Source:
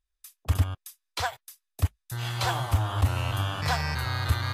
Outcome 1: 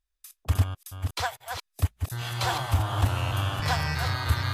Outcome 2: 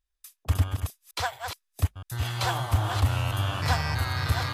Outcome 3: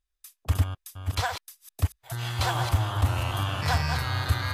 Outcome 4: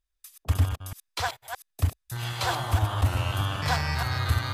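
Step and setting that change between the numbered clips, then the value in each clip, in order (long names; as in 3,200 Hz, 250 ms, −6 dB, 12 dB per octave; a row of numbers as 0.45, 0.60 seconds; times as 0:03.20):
delay that plays each chunk backwards, delay time: 277, 676, 425, 155 milliseconds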